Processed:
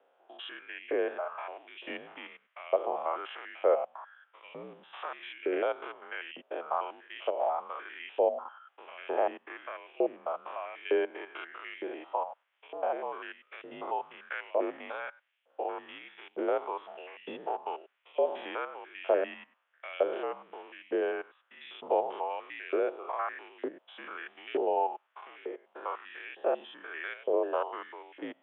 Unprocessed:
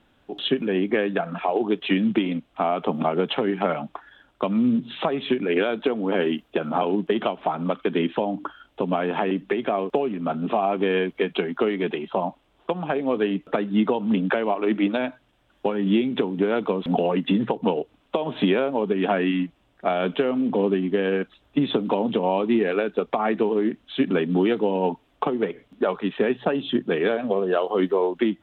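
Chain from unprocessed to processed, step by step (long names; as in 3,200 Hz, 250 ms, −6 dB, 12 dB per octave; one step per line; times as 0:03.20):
spectrum averaged block by block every 100 ms
spectral tilt −4 dB per octave
auto-filter high-pass saw up 1.1 Hz 530–2,800 Hz
single-sideband voice off tune −59 Hz 440–3,600 Hz
level −6 dB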